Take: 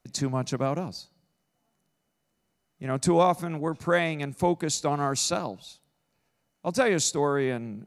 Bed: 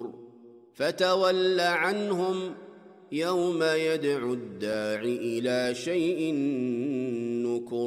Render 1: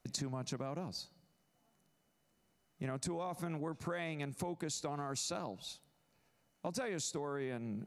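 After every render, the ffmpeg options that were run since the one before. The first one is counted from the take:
-af "alimiter=limit=-19.5dB:level=0:latency=1:release=28,acompressor=threshold=-37dB:ratio=6"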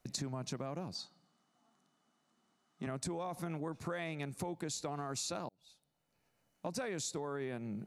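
-filter_complex "[0:a]asettb=1/sr,asplit=3[a][b][c];[a]atrim=end=0.954[d];[b]atrim=start=0.95:end=2.87,asetpts=PTS-STARTPTS,afade=t=in:d=0.004:c=qsin,afade=t=out:st=1.916:d=0.004:c=qsin,highpass=190,equalizer=f=240:t=q:w=4:g=6,equalizer=f=520:t=q:w=4:g=-7,equalizer=f=790:t=q:w=4:g=4,equalizer=f=1.2k:t=q:w=4:g=9,equalizer=f=2.4k:t=q:w=4:g=-4,equalizer=f=3.5k:t=q:w=4:g=5,lowpass=f=9k:w=0.5412,lowpass=f=9k:w=1.3066[e];[c]atrim=start=2.866[f];[d][e]acrossfade=d=0.004:c1=hsin:c2=qsin[g];[g][f]acrossfade=d=0.004:c1=qsin:c2=hsin,asplit=2[h][i];[h]atrim=end=5.49,asetpts=PTS-STARTPTS,afade=t=out:st=5.486:d=0.004:c=hsin[j];[i]atrim=start=5.49,asetpts=PTS-STARTPTS,afade=t=in:d=1.2[k];[j][k]concat=n=2:v=0:a=1"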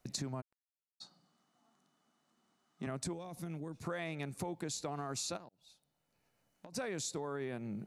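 -filter_complex "[0:a]asplit=3[a][b][c];[a]afade=t=out:st=0.4:d=0.02[d];[b]acrusher=bits=3:mix=0:aa=0.5,afade=t=in:st=0.4:d=0.02,afade=t=out:st=1:d=0.02[e];[c]afade=t=in:st=1:d=0.02[f];[d][e][f]amix=inputs=3:normalize=0,asettb=1/sr,asplit=3[g][h][i];[g]atrim=end=3.134[j];[h]atrim=start=3.13:end=3.83,asetpts=PTS-STARTPTS,afade=t=in:d=0.004:c=qsin,afade=t=out:st=0.696:d=0.004:c=qsin,equalizer=f=1k:t=o:w=2.4:g=-10[k];[i]atrim=start=3.826[l];[j][k]acrossfade=d=0.004:c1=hsin:c2=qsin[m];[m][l]acrossfade=d=0.004:c1=qsin:c2=hsin,asplit=3[n][o][p];[n]afade=t=out:st=5.36:d=0.02[q];[o]acompressor=threshold=-48dB:ratio=10:attack=3.2:release=140:knee=1:detection=peak,afade=t=in:st=5.36:d=0.02,afade=t=out:st=6.72:d=0.02[r];[p]afade=t=in:st=6.72:d=0.02[s];[q][r][s]amix=inputs=3:normalize=0"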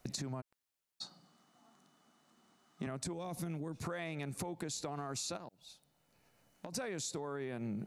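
-filter_complex "[0:a]asplit=2[a][b];[b]alimiter=level_in=11dB:limit=-24dB:level=0:latency=1,volume=-11dB,volume=2dB[c];[a][c]amix=inputs=2:normalize=0,acompressor=threshold=-37dB:ratio=6"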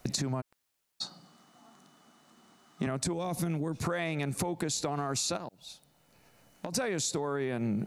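-af "volume=8.5dB"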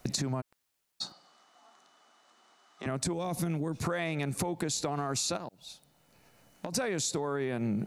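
-filter_complex "[0:a]asettb=1/sr,asplit=3[a][b][c];[a]atrim=end=1.124[d];[b]atrim=start=1.12:end=2.86,asetpts=PTS-STARTPTS,afade=t=in:d=0.004:c=qsin,afade=t=out:st=1.736:d=0.004:c=qsin,acrossover=split=410 8000:gain=0.0794 1 0.224[e][f][g];[e][f][g]amix=inputs=3:normalize=0[h];[c]atrim=start=2.856[i];[d][h]acrossfade=d=0.004:c1=hsin:c2=qsin[j];[j][i]acrossfade=d=0.004:c1=qsin:c2=hsin"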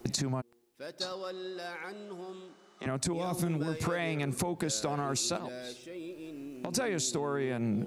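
-filter_complex "[1:a]volume=-16dB[a];[0:a][a]amix=inputs=2:normalize=0"

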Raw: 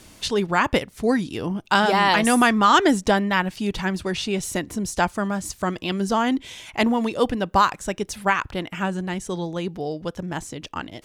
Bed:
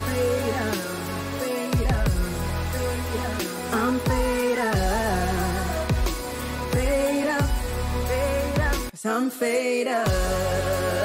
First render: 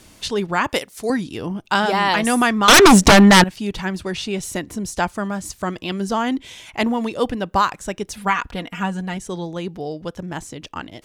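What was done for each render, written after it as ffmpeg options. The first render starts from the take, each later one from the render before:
-filter_complex "[0:a]asettb=1/sr,asplit=3[a][b][c];[a]atrim=end=0.694[d];[b]atrim=start=0.69:end=1.1,asetpts=PTS-STARTPTS,afade=t=in:d=0.004:c=qsin,afade=t=out:st=0.406:d=0.004:c=qsin,bass=f=250:g=-12,treble=f=4k:g=9[e];[c]atrim=start=1.096[f];[d][e]acrossfade=d=0.004:c1=hsin:c2=qsin[g];[g][f]acrossfade=d=0.004:c1=qsin:c2=hsin,asettb=1/sr,asplit=3[h][i][j];[h]atrim=end=2.684[k];[i]atrim=start=2.68:end=3.44,asetpts=PTS-STARTPTS,afade=t=in:d=0.004:c=qsin,afade=t=out:st=0.756:d=0.004:c=qsin,aeval=exprs='0.562*sin(PI/2*4.47*val(0)/0.562)':c=same[l];[j]atrim=start=3.436[m];[k][l]acrossfade=d=0.004:c1=hsin:c2=qsin[n];[n][m]acrossfade=d=0.004:c1=qsin:c2=hsin,asettb=1/sr,asplit=3[o][p][q];[o]atrim=end=8.174[r];[p]atrim=start=8.17:end=9.17,asetpts=PTS-STARTPTS,afade=t=in:d=0.004:c=qsin,afade=t=out:st=0.996:d=0.004:c=qsin,aecho=1:1:4.2:0.57,atrim=end_sample=44100[s];[q]atrim=start=9.166[t];[r][s]acrossfade=d=0.004:c1=hsin:c2=qsin[u];[u][t]acrossfade=d=0.004:c1=qsin:c2=hsin"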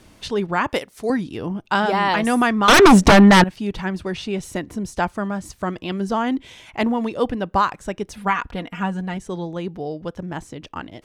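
-af "highshelf=f=3.3k:g=-9,bandreject=f=7.1k:w=29"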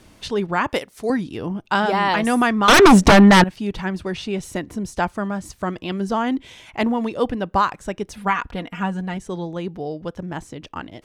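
-af anull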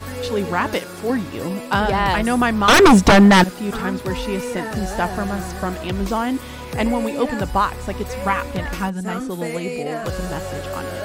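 -filter_complex "[1:a]volume=-4.5dB[a];[0:a][a]amix=inputs=2:normalize=0"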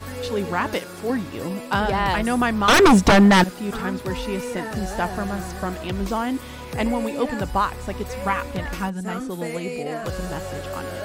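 -af "volume=-3dB"

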